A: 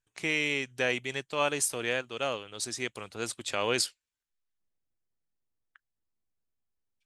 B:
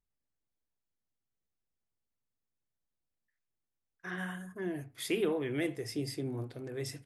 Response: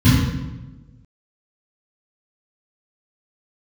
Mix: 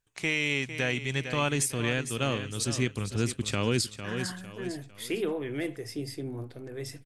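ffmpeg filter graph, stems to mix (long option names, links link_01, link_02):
-filter_complex "[0:a]asubboost=boost=12:cutoff=210,volume=2.5dB,asplit=2[link_01][link_02];[link_02]volume=-11.5dB[link_03];[1:a]volume=0.5dB[link_04];[link_03]aecho=0:1:453|906|1359|1812|2265:1|0.38|0.144|0.0549|0.0209[link_05];[link_01][link_04][link_05]amix=inputs=3:normalize=0,alimiter=limit=-15.5dB:level=0:latency=1:release=262"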